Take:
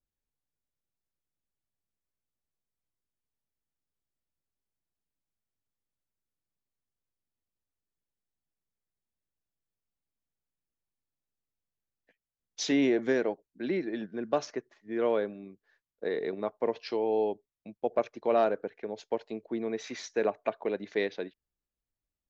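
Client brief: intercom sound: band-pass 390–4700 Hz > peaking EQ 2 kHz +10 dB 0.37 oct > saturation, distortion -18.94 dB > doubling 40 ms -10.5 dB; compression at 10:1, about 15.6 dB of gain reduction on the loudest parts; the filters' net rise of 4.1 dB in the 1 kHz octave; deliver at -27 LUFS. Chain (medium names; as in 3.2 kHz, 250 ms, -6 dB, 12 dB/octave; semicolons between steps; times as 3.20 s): peaking EQ 1 kHz +6 dB; compression 10:1, threshold -35 dBFS; band-pass 390–4700 Hz; peaking EQ 2 kHz +10 dB 0.37 oct; saturation -29.5 dBFS; doubling 40 ms -10.5 dB; trim +16 dB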